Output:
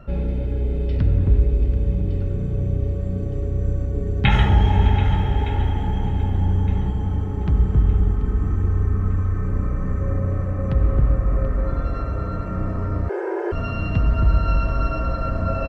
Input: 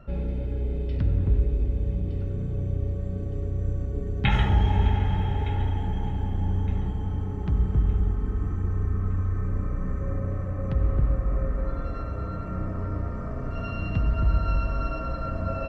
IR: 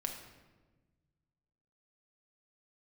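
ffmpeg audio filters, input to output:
-filter_complex "[0:a]aecho=1:1:734:0.211,asettb=1/sr,asplit=3[s0][s1][s2];[s0]atrim=end=13.094[s3];[s1]atrim=start=13.09:end=13.52,asetpts=PTS-STARTPTS,afade=t=in:d=0.004:c=qsin,afade=t=out:st=0.426:d=0.004:c=qsin,afreqshift=320[s4];[s2]atrim=start=13.516[s5];[s3][s4]acrossfade=d=0.004:c1=hsin:c2=qsin[s6];[s6][s5]acrossfade=d=0.004:c1=qsin:c2=hsin,volume=1.88"

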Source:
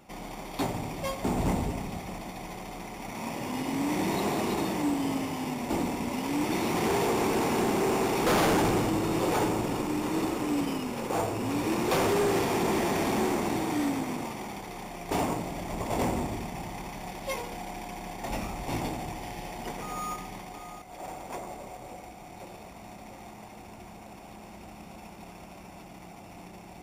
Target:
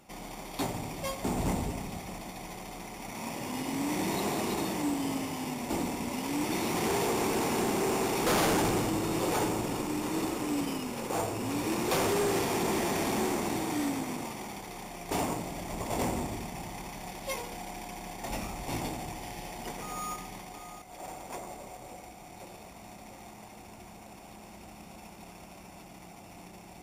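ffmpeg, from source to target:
-af "equalizer=f=10000:w=0.37:g=5.5,volume=0.708"

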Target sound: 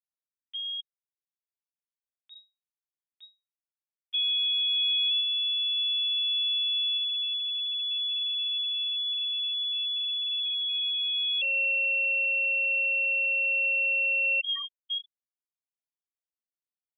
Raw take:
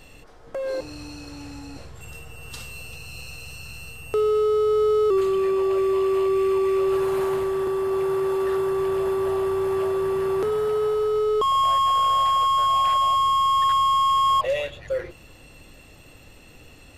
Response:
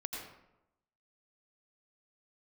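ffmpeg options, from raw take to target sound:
-af "afftfilt=real='re*gte(hypot(re,im),0.178)':imag='im*gte(hypot(re,im),0.178)':win_size=1024:overlap=0.75,acompressor=mode=upward:threshold=0.0355:ratio=2.5,lowpass=f=3200:t=q:w=0.5098,lowpass=f=3200:t=q:w=0.6013,lowpass=f=3200:t=q:w=0.9,lowpass=f=3200:t=q:w=2.563,afreqshift=-3800,volume=0.473"

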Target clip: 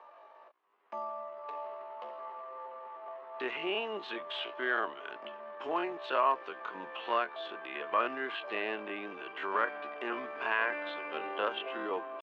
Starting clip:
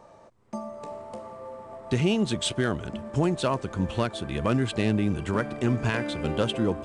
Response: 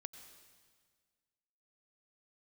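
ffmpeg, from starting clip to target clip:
-filter_complex "[0:a]highpass=f=440:w=0.5412,highpass=f=440:w=1.3066,equalizer=f=510:t=q:w=4:g=-7,equalizer=f=1100:t=q:w=4:g=6,equalizer=f=1700:t=q:w=4:g=4,equalizer=f=2800:t=q:w=4:g=5,lowpass=f=3500:w=0.5412,lowpass=f=3500:w=1.3066,atempo=0.56,acrossover=split=2500[s0][s1];[s1]acompressor=threshold=0.00708:ratio=4:attack=1:release=60[s2];[s0][s2]amix=inputs=2:normalize=0,volume=0.75"

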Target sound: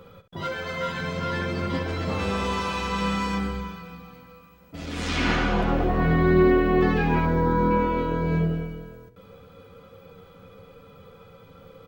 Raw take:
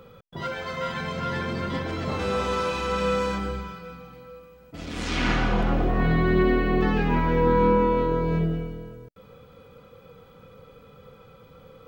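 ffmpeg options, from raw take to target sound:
-filter_complex "[0:a]asettb=1/sr,asplit=3[s0][s1][s2];[s0]atrim=end=7.254[s3];[s1]atrim=start=7.25:end=7.71,asetpts=PTS-STARTPTS,afade=t=in:d=0.004:c=qsin,afade=t=out:st=0.456:d=0.004:c=qsin,equalizer=f=2700:t=o:w=0.75:g=-12.5[s4];[s2]atrim=start=7.706[s5];[s3][s4]acrossfade=d=0.004:c1=hsin:c2=qsin[s6];[s6][s5]acrossfade=d=0.004:c1=qsin:c2=hsin,asplit=2[s7][s8];[s8]aecho=0:1:11|71:0.531|0.282[s9];[s7][s9]amix=inputs=2:normalize=0"

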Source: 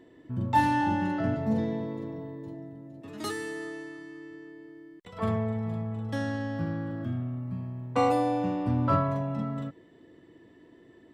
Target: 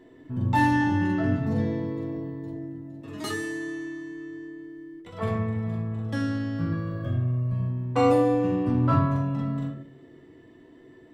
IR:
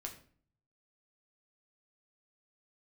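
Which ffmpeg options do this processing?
-filter_complex "[0:a]asettb=1/sr,asplit=3[s0][s1][s2];[s0]atrim=end=6.724[s3];[s1]atrim=start=6.72:end=7.69,asetpts=PTS-STARTPTS,afade=t=in:d=0.004:c=qsin,afade=t=out:st=0.966:d=0.004:c=qsin,aecho=1:1:1.8:0.77,atrim=end_sample=42777[s4];[s2]atrim=start=7.686[s5];[s3][s4]acrossfade=d=0.004:c1=hsin:c2=qsin[s6];[s6][s5]acrossfade=d=0.004:c1=qsin:c2=hsin[s7];[1:a]atrim=start_sample=2205[s8];[s7][s8]afir=irnorm=-1:irlink=0,volume=1.88"

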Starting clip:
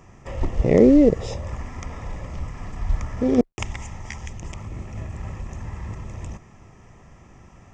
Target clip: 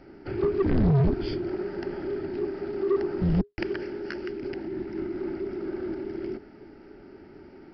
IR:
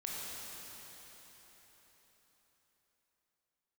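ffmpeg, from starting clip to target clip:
-af "afreqshift=-430,aresample=11025,asoftclip=type=tanh:threshold=0.126,aresample=44100"

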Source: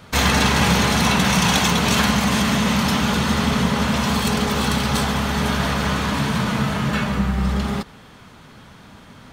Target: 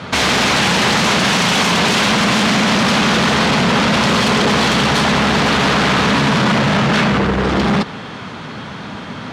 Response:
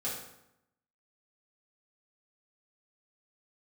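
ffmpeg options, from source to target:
-filter_complex "[0:a]asplit=2[s0][s1];[s1]aeval=exprs='0.631*sin(PI/2*7.08*val(0)/0.631)':c=same,volume=0.501[s2];[s0][s2]amix=inputs=2:normalize=0,highpass=120,lowpass=4800,asoftclip=type=tanh:threshold=0.422"

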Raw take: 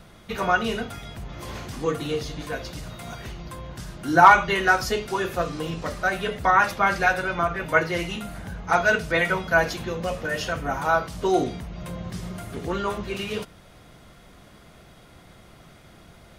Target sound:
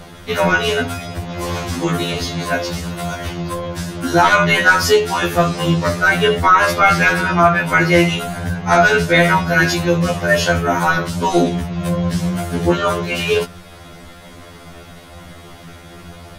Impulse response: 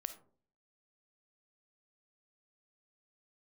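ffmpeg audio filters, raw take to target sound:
-af "apsyclip=8.91,afftfilt=real='re*2*eq(mod(b,4),0)':imag='im*2*eq(mod(b,4),0)':win_size=2048:overlap=0.75,volume=0.596"

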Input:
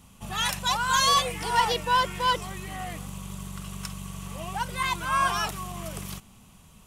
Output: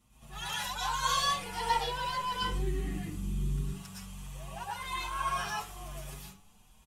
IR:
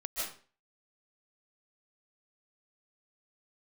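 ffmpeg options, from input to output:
-filter_complex "[0:a]asettb=1/sr,asplit=3[s0][s1][s2];[s0]atrim=end=2.414[s3];[s1]atrim=start=2.41:end=3.61,asetpts=PTS-STARTPTS,afade=t=in:d=0.004:c=qsin,afade=t=out:st=1.196:d=0.004:c=qsin,lowshelf=f=460:t=q:w=3:g=11.5[s4];[s2]atrim=start=3.606[s5];[s3][s4]acrossfade=d=0.004:c1=hsin:c2=qsin[s6];[s6][s5]acrossfade=d=0.004:c1=qsin:c2=hsin[s7];[1:a]atrim=start_sample=2205,asetrate=57330,aresample=44100[s8];[s7][s8]afir=irnorm=-1:irlink=0,asplit=2[s9][s10];[s10]adelay=6.2,afreqshift=1.2[s11];[s9][s11]amix=inputs=2:normalize=1,volume=0.531"

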